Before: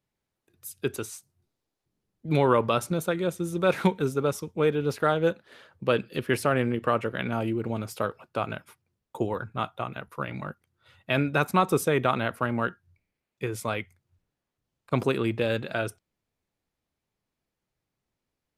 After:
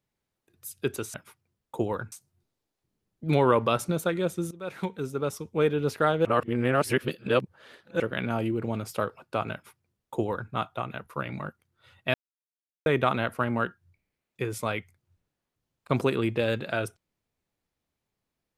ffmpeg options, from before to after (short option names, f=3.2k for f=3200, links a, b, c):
-filter_complex "[0:a]asplit=8[a][b][c][d][e][f][g][h];[a]atrim=end=1.142[i];[b]atrim=start=8.548:end=9.532[j];[c]atrim=start=1.138:end=3.53,asetpts=PTS-STARTPTS,afade=t=out:st=2.388:d=0.004:c=hsin:silence=0.1[k];[d]atrim=start=3.53:end=5.272,asetpts=PTS-STARTPTS,afade=t=in:d=1.15:silence=0.1[l];[e]atrim=start=5.268:end=7.022,asetpts=PTS-STARTPTS,areverse[m];[f]atrim=start=7.018:end=11.16,asetpts=PTS-STARTPTS,afade=t=out:st=4.138:d=0.004:c=hsin[n];[g]atrim=start=11.16:end=11.88,asetpts=PTS-STARTPTS,volume=0[o];[h]atrim=start=11.88,asetpts=PTS-STARTPTS,afade=t=in:d=0.004:c=hsin[p];[i][j]acrossfade=d=0.004:c1=hsin:c2=hsin[q];[k][l]concat=n=2:v=0:a=1[r];[q][r]acrossfade=d=0.004:c1=hsin:c2=hsin[s];[s][m]acrossfade=d=0.004:c1=hsin:c2=hsin[t];[n][o][p]concat=n=3:v=0:a=1[u];[t][u]acrossfade=d=0.004:c1=hsin:c2=hsin"